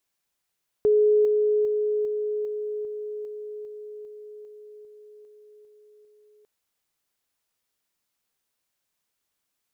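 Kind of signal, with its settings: level ladder 422 Hz -15.5 dBFS, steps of -3 dB, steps 14, 0.40 s 0.00 s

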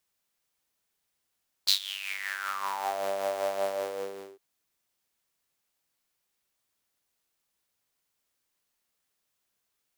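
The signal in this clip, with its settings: synth patch with tremolo G3, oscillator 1 saw, detune 18 cents, sub -1.5 dB, noise -13.5 dB, filter highpass, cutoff 380 Hz, Q 8.3, filter envelope 3.5 oct, filter decay 1.35 s, filter sustain 20%, attack 17 ms, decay 0.10 s, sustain -16.5 dB, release 0.73 s, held 1.98 s, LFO 5.2 Hz, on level 4.5 dB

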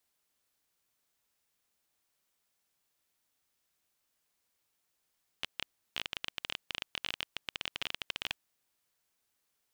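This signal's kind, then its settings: random clicks 18 per s -16.5 dBFS 2.96 s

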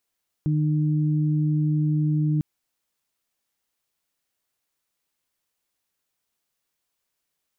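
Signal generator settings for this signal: steady additive tone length 1.95 s, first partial 152 Hz, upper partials -8 dB, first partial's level -19.5 dB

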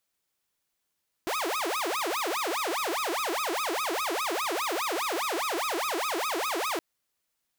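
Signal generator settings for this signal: siren wail 323–1280 Hz 4.9 per s saw -25 dBFS 5.52 s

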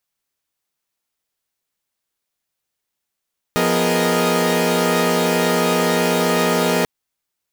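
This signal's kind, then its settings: chord F3/B3/G#4/A#4/D#5 saw, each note -19.5 dBFS 3.29 s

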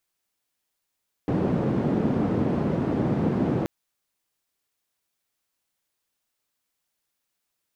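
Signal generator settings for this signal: noise band 150–260 Hz, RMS -24 dBFS 2.38 s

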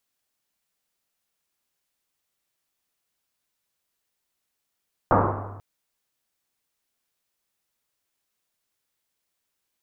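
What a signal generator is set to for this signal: Risset drum length 0.49 s, pitch 100 Hz, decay 1.73 s, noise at 710 Hz, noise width 1.1 kHz, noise 65%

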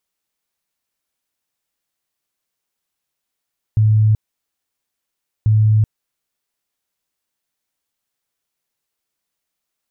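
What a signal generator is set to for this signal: tone bursts 108 Hz, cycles 41, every 1.69 s, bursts 2, -9.5 dBFS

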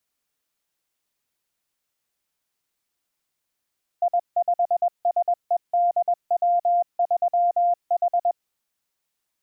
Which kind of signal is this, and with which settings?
Morse "I5SEDW3H" 21 wpm 699 Hz -16.5 dBFS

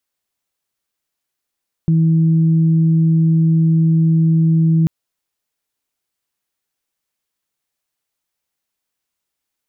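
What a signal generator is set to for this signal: steady additive tone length 2.99 s, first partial 162 Hz, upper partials -15.5 dB, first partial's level -10 dB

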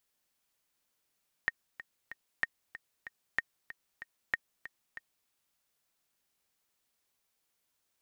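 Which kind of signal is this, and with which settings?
metronome 189 bpm, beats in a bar 3, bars 4, 1.85 kHz, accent 15 dB -15 dBFS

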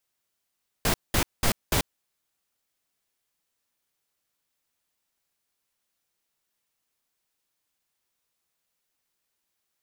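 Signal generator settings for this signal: noise bursts pink, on 0.09 s, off 0.20 s, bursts 4, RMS -22.5 dBFS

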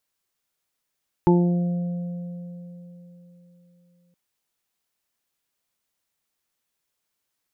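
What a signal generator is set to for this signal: additive tone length 2.87 s, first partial 175 Hz, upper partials 1/-16/-20/-4 dB, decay 3.75 s, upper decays 0.87/4.32/2.39/0.38 s, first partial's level -15 dB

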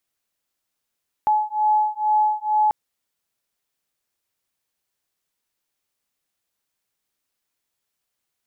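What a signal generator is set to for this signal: beating tones 851 Hz, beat 2.2 Hz, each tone -20 dBFS 1.44 s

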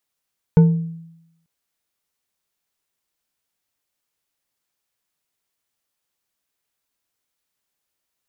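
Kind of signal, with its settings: glass hit bar, lowest mode 165 Hz, decay 0.86 s, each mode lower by 10.5 dB, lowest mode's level -5.5 dB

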